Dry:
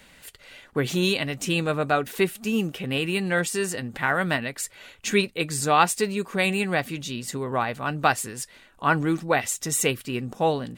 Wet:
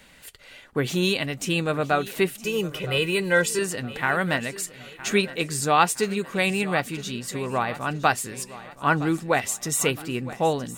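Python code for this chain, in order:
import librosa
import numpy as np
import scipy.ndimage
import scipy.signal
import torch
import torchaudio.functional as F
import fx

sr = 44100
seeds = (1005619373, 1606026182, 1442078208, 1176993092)

p1 = fx.comb(x, sr, ms=2.0, depth=0.92, at=(2.44, 3.59))
y = p1 + fx.echo_feedback(p1, sr, ms=964, feedback_pct=44, wet_db=-16.5, dry=0)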